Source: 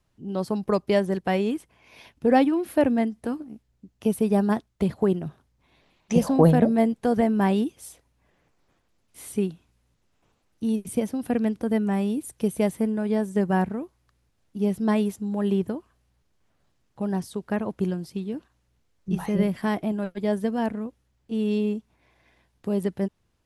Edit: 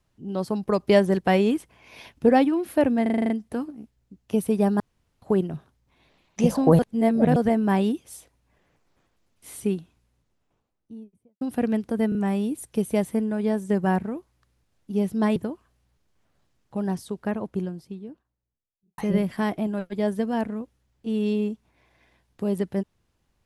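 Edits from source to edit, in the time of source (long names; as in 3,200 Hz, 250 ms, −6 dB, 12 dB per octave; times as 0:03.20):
0:00.80–0:02.29: clip gain +4 dB
0:03.02: stutter 0.04 s, 8 plays
0:04.52–0:04.94: fill with room tone
0:06.51–0:07.08: reverse
0:09.48–0:11.13: fade out and dull
0:11.81: stutter 0.03 s, 3 plays
0:15.02–0:15.61: remove
0:17.16–0:19.23: fade out and dull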